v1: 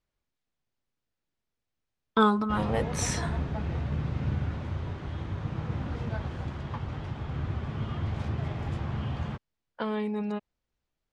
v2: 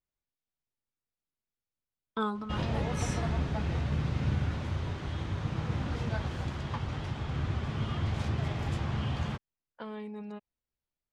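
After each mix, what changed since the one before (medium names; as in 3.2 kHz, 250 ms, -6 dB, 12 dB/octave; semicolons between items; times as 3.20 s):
speech -10.0 dB; background: add treble shelf 3 kHz +9.5 dB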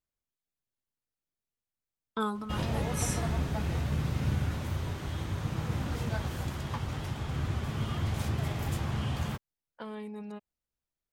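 master: remove low-pass 5 kHz 12 dB/octave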